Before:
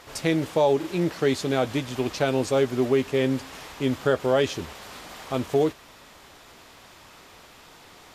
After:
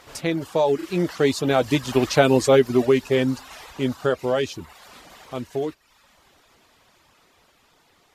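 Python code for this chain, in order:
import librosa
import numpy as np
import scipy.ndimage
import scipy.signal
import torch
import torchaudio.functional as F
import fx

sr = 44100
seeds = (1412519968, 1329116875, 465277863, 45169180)

p1 = fx.doppler_pass(x, sr, speed_mps=6, closest_m=2.8, pass_at_s=2.32)
p2 = fx.dereverb_blind(p1, sr, rt60_s=0.69)
p3 = fx.rider(p2, sr, range_db=4, speed_s=0.5)
p4 = p2 + F.gain(torch.from_numpy(p3), 3.0).numpy()
y = F.gain(torch.from_numpy(p4), 2.5).numpy()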